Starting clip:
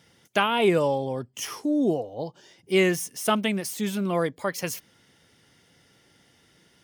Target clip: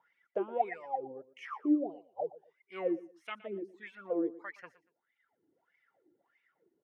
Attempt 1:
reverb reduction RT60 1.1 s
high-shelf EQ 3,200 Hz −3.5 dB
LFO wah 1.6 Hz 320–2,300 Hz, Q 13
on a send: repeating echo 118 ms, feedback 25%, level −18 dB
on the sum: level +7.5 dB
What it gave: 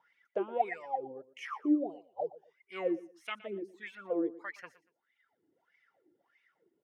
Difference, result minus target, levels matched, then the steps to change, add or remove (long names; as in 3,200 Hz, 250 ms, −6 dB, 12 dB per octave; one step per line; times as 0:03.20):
4,000 Hz band +5.0 dB
change: high-shelf EQ 3,200 Hz −14 dB